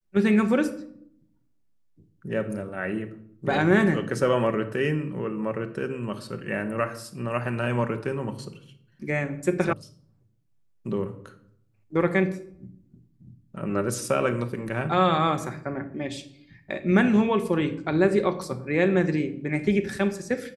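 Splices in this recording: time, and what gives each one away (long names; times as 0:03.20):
0:09.73: cut off before it has died away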